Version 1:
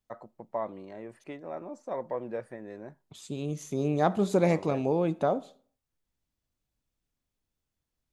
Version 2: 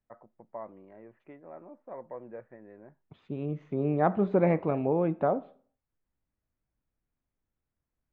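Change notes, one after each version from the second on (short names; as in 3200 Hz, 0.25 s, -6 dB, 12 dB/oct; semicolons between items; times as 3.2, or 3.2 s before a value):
first voice -8.0 dB; master: add LPF 2200 Hz 24 dB/oct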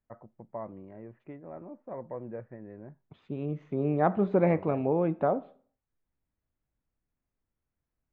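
first voice: remove HPF 470 Hz 6 dB/oct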